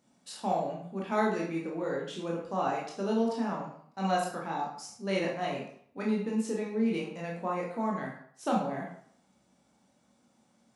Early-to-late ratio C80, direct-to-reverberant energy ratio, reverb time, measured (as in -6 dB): 7.5 dB, -3.0 dB, 0.60 s